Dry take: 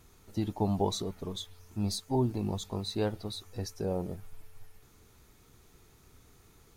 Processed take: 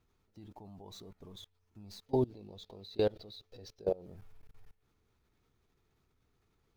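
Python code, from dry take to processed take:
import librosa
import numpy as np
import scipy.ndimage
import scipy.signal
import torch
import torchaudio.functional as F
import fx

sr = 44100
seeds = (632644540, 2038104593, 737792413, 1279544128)

y = scipy.signal.medfilt(x, 5)
y = fx.graphic_eq(y, sr, hz=(500, 1000, 4000, 8000), db=(10, -4, 11, -4), at=(2.06, 4.06))
y = fx.level_steps(y, sr, step_db=24)
y = F.gain(torch.from_numpy(y), -2.5).numpy()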